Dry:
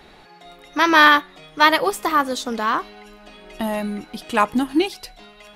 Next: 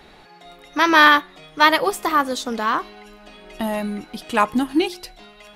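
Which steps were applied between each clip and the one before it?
hum removal 355.8 Hz, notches 3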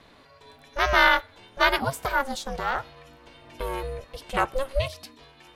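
ring modulation 270 Hz
level −3.5 dB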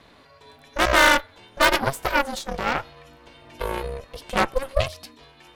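harmonic generator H 8 −15 dB, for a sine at −4.5 dBFS
level +1.5 dB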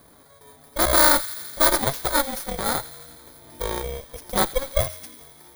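samples in bit-reversed order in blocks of 16 samples
delay with a high-pass on its return 84 ms, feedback 78%, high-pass 2,100 Hz, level −15.5 dB

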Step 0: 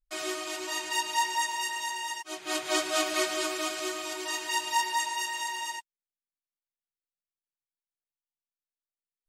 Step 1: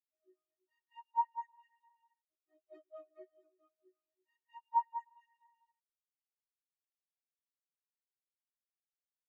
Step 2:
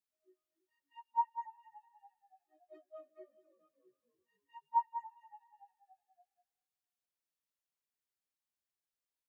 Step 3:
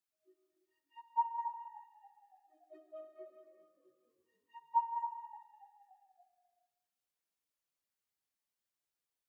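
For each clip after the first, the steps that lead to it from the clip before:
every bin expanded away from the loudest bin 4 to 1; level −6 dB
echo with shifted repeats 286 ms, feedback 59%, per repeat −44 Hz, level −21 dB
spectral magnitudes quantised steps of 15 dB; reverb whose tail is shaped and stops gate 450 ms flat, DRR 4 dB

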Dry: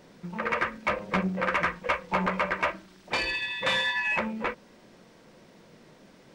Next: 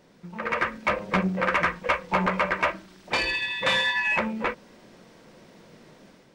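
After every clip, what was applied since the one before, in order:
automatic gain control gain up to 7 dB
level −4 dB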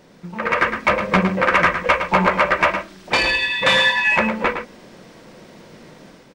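slap from a distant wall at 19 metres, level −8 dB
level +7.5 dB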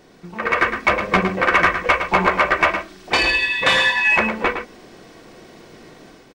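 comb filter 2.7 ms, depth 39%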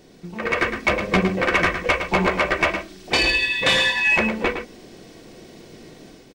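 parametric band 1,200 Hz −9 dB 1.7 octaves
level +2 dB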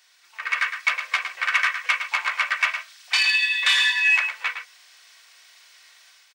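high-pass filter 1,200 Hz 24 dB per octave

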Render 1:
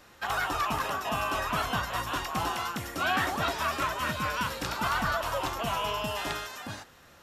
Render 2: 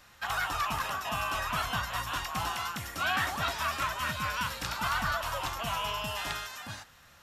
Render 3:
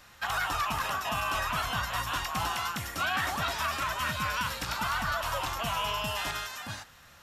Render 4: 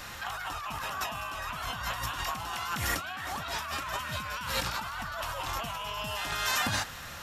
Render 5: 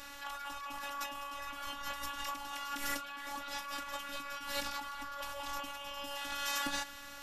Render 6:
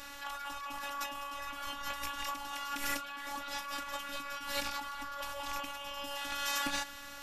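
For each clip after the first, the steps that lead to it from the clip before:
parametric band 370 Hz −11 dB 1.6 octaves
brickwall limiter −23 dBFS, peak gain reduction 6.5 dB; level +2.5 dB
compressor whose output falls as the input rises −40 dBFS, ratio −1; level +5 dB
phases set to zero 282 Hz; level −4 dB
loose part that buzzes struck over −49 dBFS, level −31 dBFS; level +1.5 dB

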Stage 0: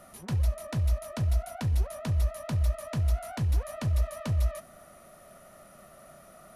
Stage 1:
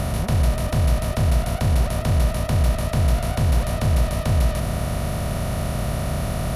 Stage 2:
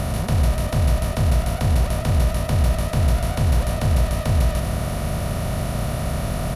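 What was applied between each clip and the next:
compressor on every frequency bin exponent 0.2; level +4.5 dB
single-tap delay 97 ms −11 dB

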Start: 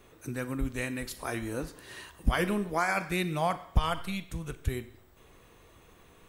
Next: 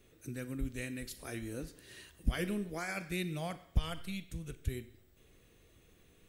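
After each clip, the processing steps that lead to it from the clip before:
parametric band 980 Hz −13.5 dB 1.1 octaves
level −5 dB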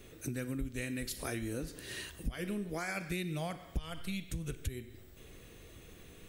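downward compressor 5 to 1, threshold −45 dBFS, peak gain reduction 20 dB
level +10 dB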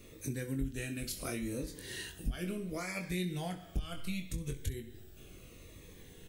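on a send: ambience of single reflections 22 ms −6 dB, 66 ms −16.5 dB
on the sum: phaser whose notches keep moving one way falling 0.71 Hz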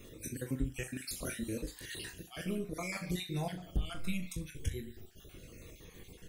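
time-frequency cells dropped at random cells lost 38%
flutter between parallel walls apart 6.7 metres, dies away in 0.22 s
level +2 dB

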